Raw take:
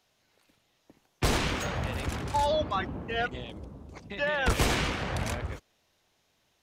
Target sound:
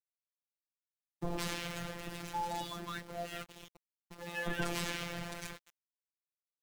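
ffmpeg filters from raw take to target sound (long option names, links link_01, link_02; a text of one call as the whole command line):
ffmpeg -i in.wav -filter_complex "[0:a]acrossover=split=990[link_01][link_02];[link_02]adelay=160[link_03];[link_01][link_03]amix=inputs=2:normalize=0,aeval=exprs='val(0)*gte(abs(val(0)),0.0158)':channel_layout=same,afftfilt=real='hypot(re,im)*cos(PI*b)':imag='0':win_size=1024:overlap=0.75,volume=-5dB" out.wav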